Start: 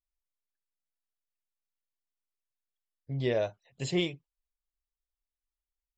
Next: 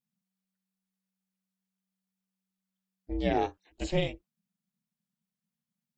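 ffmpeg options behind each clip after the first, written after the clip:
-filter_complex "[0:a]acrossover=split=2800[s0][s1];[s1]acompressor=threshold=0.00794:ratio=4:attack=1:release=60[s2];[s0][s2]amix=inputs=2:normalize=0,aeval=exprs='val(0)*sin(2*PI*190*n/s)':c=same,volume=1.58"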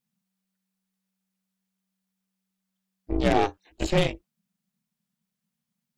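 -af "aeval=exprs='0.188*(cos(1*acos(clip(val(0)/0.188,-1,1)))-cos(1*PI/2))+0.0211*(cos(8*acos(clip(val(0)/0.188,-1,1)))-cos(8*PI/2))':c=same,volume=1.88"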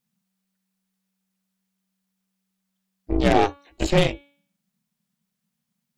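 -af "bandreject=f=283.3:t=h:w=4,bandreject=f=566.6:t=h:w=4,bandreject=f=849.9:t=h:w=4,bandreject=f=1133.2:t=h:w=4,bandreject=f=1416.5:t=h:w=4,bandreject=f=1699.8:t=h:w=4,bandreject=f=1983.1:t=h:w=4,bandreject=f=2266.4:t=h:w=4,bandreject=f=2549.7:t=h:w=4,bandreject=f=2833:t=h:w=4,bandreject=f=3116.3:t=h:w=4,bandreject=f=3399.6:t=h:w=4,bandreject=f=3682.9:t=h:w=4,bandreject=f=3966.2:t=h:w=4,bandreject=f=4249.5:t=h:w=4,volume=1.58"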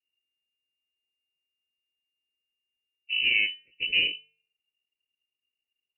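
-af "lowpass=f=2600:t=q:w=0.5098,lowpass=f=2600:t=q:w=0.6013,lowpass=f=2600:t=q:w=0.9,lowpass=f=2600:t=q:w=2.563,afreqshift=-3000,asuperstop=centerf=1000:order=8:qfactor=0.62,volume=0.501"

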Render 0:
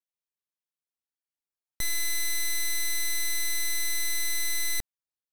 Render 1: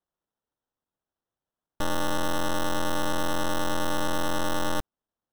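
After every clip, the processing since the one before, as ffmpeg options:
-af "acrusher=samples=19:mix=1:aa=0.000001,volume=1.19"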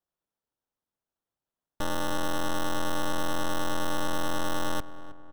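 -filter_complex "[0:a]asplit=2[s0][s1];[s1]adelay=316,lowpass=f=1700:p=1,volume=0.2,asplit=2[s2][s3];[s3]adelay=316,lowpass=f=1700:p=1,volume=0.53,asplit=2[s4][s5];[s5]adelay=316,lowpass=f=1700:p=1,volume=0.53,asplit=2[s6][s7];[s7]adelay=316,lowpass=f=1700:p=1,volume=0.53,asplit=2[s8][s9];[s9]adelay=316,lowpass=f=1700:p=1,volume=0.53[s10];[s0][s2][s4][s6][s8][s10]amix=inputs=6:normalize=0,volume=0.75"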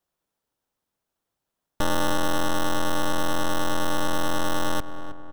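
-af "acompressor=threshold=0.0398:ratio=6,volume=2.51"

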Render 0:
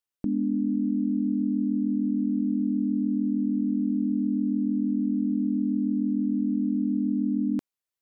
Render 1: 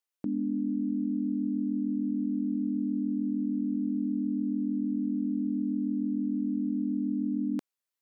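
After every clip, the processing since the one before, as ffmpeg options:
-af "highpass=f=320:p=1"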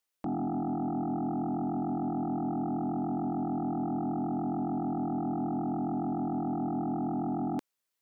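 -af "aeval=exprs='0.0841*(cos(1*acos(clip(val(0)/0.0841,-1,1)))-cos(1*PI/2))+0.00106*(cos(3*acos(clip(val(0)/0.0841,-1,1)))-cos(3*PI/2))':c=same,aeval=exprs='0.0841*sin(PI/2*2.51*val(0)/0.0841)':c=same,volume=0.447"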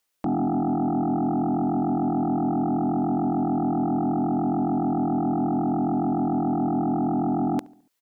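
-filter_complex "[0:a]asplit=2[s0][s1];[s1]adelay=71,lowpass=f=1600:p=1,volume=0.0841,asplit=2[s2][s3];[s3]adelay=71,lowpass=f=1600:p=1,volume=0.5,asplit=2[s4][s5];[s5]adelay=71,lowpass=f=1600:p=1,volume=0.5,asplit=2[s6][s7];[s7]adelay=71,lowpass=f=1600:p=1,volume=0.5[s8];[s0][s2][s4][s6][s8]amix=inputs=5:normalize=0,volume=2.51"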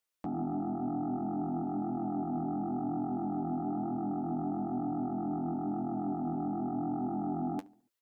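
-af "flanger=delay=8.3:depth=9.2:regen=37:speed=0.51:shape=triangular,volume=0.473"

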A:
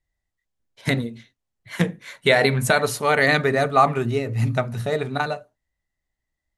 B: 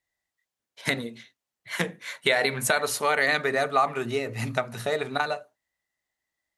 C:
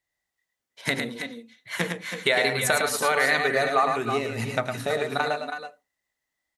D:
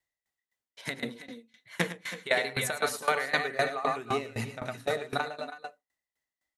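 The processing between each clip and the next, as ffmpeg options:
-af "highpass=f=580:p=1,acompressor=threshold=0.0447:ratio=2,volume=1.41"
-af "aecho=1:1:83|107|323|327:0.106|0.531|0.266|0.282"
-af "aeval=exprs='val(0)*pow(10,-19*if(lt(mod(3.9*n/s,1),2*abs(3.9)/1000),1-mod(3.9*n/s,1)/(2*abs(3.9)/1000),(mod(3.9*n/s,1)-2*abs(3.9)/1000)/(1-2*abs(3.9)/1000))/20)':c=same"

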